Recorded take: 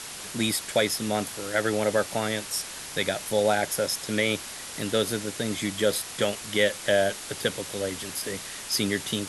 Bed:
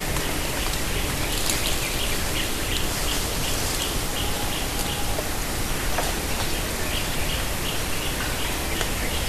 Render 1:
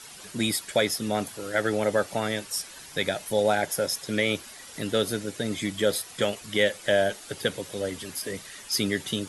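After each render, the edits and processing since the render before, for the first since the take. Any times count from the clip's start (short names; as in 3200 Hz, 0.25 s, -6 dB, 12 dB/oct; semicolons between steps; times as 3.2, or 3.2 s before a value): denoiser 10 dB, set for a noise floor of -39 dBFS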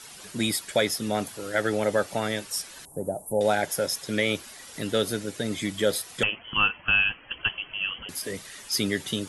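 2.85–3.41 elliptic band-stop 820–9200 Hz, stop band 80 dB; 6.23–8.09 inverted band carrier 3200 Hz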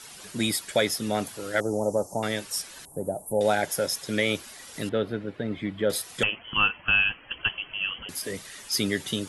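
1.6–2.23 elliptic band-stop 950–6000 Hz, stop band 50 dB; 4.89–5.9 air absorption 460 m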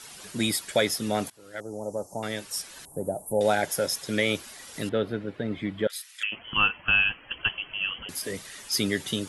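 1.3–2.91 fade in, from -19.5 dB; 5.87–6.32 ladder high-pass 1500 Hz, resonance 30%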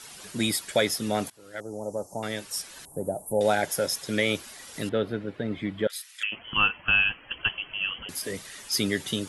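nothing audible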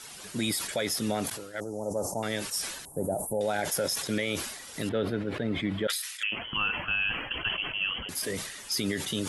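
limiter -19.5 dBFS, peak gain reduction 9 dB; sustainer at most 55 dB/s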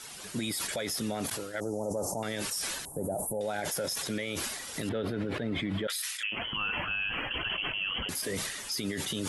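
AGC gain up to 3.5 dB; limiter -24 dBFS, peak gain reduction 9.5 dB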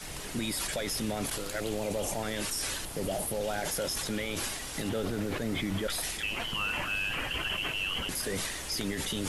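add bed -17 dB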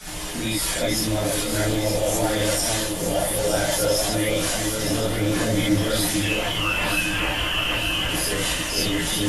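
on a send: echo with dull and thin repeats by turns 0.457 s, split 820 Hz, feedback 66%, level -2.5 dB; on the sum: non-linear reverb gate 90 ms rising, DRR -7.5 dB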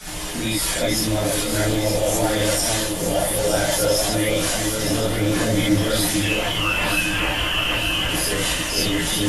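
gain +2 dB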